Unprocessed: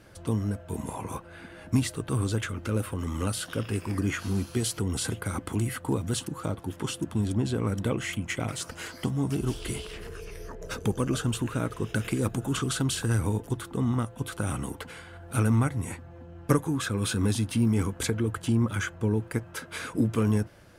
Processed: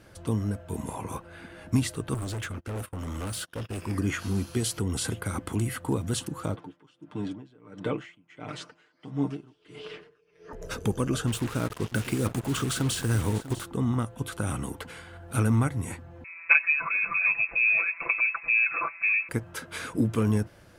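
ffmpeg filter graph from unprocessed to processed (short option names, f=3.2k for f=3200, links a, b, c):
-filter_complex "[0:a]asettb=1/sr,asplit=3[a][b][c];[a]atrim=end=2.144[d];[b]atrim=start=2.14:end=3.82,asetpts=PTS-STARTPTS,afade=t=in:d=0.004:c=qsin,afade=t=out:st=1.676:d=0.004:c=qsin,agate=range=-28dB:threshold=-36dB:ratio=16:release=100:detection=peak,asoftclip=type=hard:threshold=-30.5dB[e];[c]atrim=start=3.816[f];[d][e]acrossfade=d=0.004:c1=hsin:c2=qsin[g];[g][f]acrossfade=d=0.004:c1=qsin:c2=hsin,asettb=1/sr,asplit=3[h][i][j];[h]atrim=end=6.564[k];[i]atrim=start=6.56:end=10.53,asetpts=PTS-STARTPTS,afade=t=in:d=0.004:c=qsin,afade=t=out:st=3.966:d=0.004:c=qsin,highpass=190,lowpass=3.6k,aecho=1:1:6.7:0.63,atrim=end_sample=175077,aeval=exprs='val(0)*pow(10,-27*(0.5-0.5*cos(2*PI*1.5*n/s))/20)':c=same[l];[j]atrim=start=10.526[m];[k][l]acrossfade=d=0.004:c1=hsin:c2=qsin[n];[n][m]acrossfade=d=0.004:c1=qsin:c2=hsin,asettb=1/sr,asplit=3[o][p][q];[o]atrim=end=11.274[r];[p]atrim=start=11.27:end=13.65,asetpts=PTS-STARTPTS,afade=t=in:d=0.004:c=qsin,afade=t=out:st=2.376:d=0.004:c=qsin,acrusher=bits=5:mix=0:aa=0.5,aecho=1:1:646:0.178,atrim=end_sample=104958[s];[q]atrim=start=13.646[t];[r][s]acrossfade=d=0.004:c1=hsin:c2=qsin[u];[u][t]acrossfade=d=0.004:c1=qsin:c2=hsin,asettb=1/sr,asplit=3[v][w][x];[v]atrim=end=16.244[y];[w]atrim=start=16.24:end=19.29,asetpts=PTS-STARTPTS,afade=t=in:d=0.004:c=qsin,afade=t=out:st=3.046:d=0.004:c=qsin,aecho=1:1:5.9:0.87,atrim=end_sample=134505,lowpass=f=2.3k:t=q:w=0.5098,lowpass=f=2.3k:t=q:w=0.6013,lowpass=f=2.3k:t=q:w=0.9,lowpass=f=2.3k:t=q:w=2.563,afreqshift=-2700[z];[x]atrim=start=19.286[aa];[y][z]acrossfade=d=0.004:c1=hsin:c2=qsin[ab];[ab][aa]acrossfade=d=0.004:c1=qsin:c2=hsin"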